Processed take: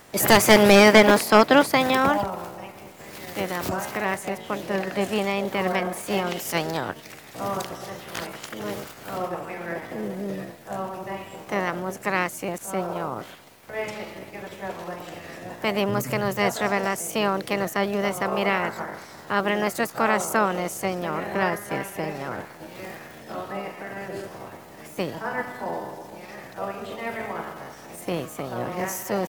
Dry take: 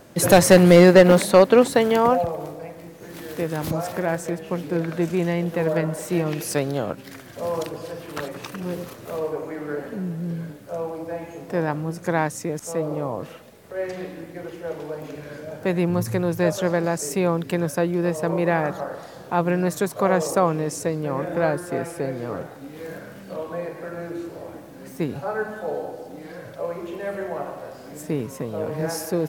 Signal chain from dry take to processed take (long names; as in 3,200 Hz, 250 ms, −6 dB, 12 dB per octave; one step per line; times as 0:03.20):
ceiling on every frequency bin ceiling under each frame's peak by 13 dB
pitch shifter +2.5 semitones
level −2 dB